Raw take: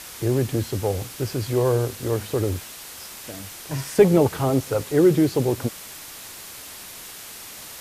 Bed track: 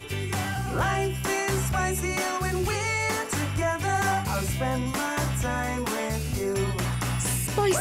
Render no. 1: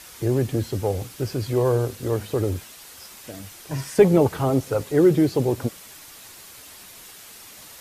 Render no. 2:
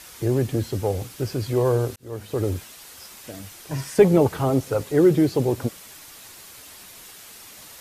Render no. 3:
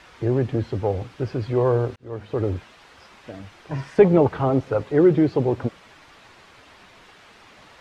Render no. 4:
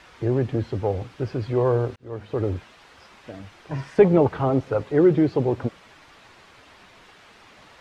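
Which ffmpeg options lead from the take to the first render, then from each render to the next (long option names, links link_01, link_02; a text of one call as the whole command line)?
ffmpeg -i in.wav -af "afftdn=noise_reduction=6:noise_floor=-40" out.wav
ffmpeg -i in.wav -filter_complex "[0:a]asplit=2[link_01][link_02];[link_01]atrim=end=1.96,asetpts=PTS-STARTPTS,afade=type=out:start_time=1.956:duration=0.004:curve=hsin[link_03];[link_02]atrim=start=1.96,asetpts=PTS-STARTPTS,afade=type=in:duration=0.5[link_04];[link_03][link_04]concat=n=2:v=0:a=1" out.wav
ffmpeg -i in.wav -af "lowpass=2800,equalizer=frequency=960:width_type=o:width=1.7:gain=2.5" out.wav
ffmpeg -i in.wav -af "volume=-1dB" out.wav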